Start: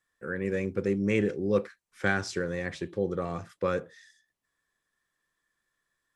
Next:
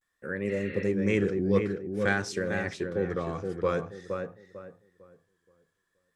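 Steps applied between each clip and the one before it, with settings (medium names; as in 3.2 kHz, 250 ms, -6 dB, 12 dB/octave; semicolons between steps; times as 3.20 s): filtered feedback delay 462 ms, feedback 30%, low-pass 2 kHz, level -5 dB; spectral replace 0.52–0.83 s, 1.2–4.4 kHz after; vibrato 0.5 Hz 70 cents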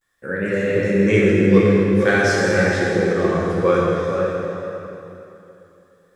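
plate-style reverb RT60 2.8 s, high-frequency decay 0.85×, DRR -5 dB; trim +6 dB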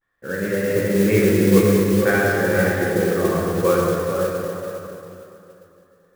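low-pass 2.1 kHz 12 dB/octave; modulation noise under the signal 17 dB; trim -1 dB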